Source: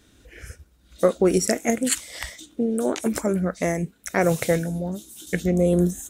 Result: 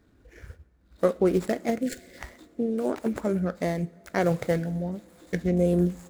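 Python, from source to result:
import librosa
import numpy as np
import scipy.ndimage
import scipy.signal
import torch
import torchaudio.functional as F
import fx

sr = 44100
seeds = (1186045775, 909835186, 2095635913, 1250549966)

y = scipy.ndimage.median_filter(x, 15, mode='constant')
y = fx.spec_erase(y, sr, start_s=1.79, length_s=0.39, low_hz=590.0, high_hz=1400.0)
y = fx.rev_double_slope(y, sr, seeds[0], early_s=0.5, late_s=4.6, knee_db=-17, drr_db=17.0)
y = y * 10.0 ** (-3.5 / 20.0)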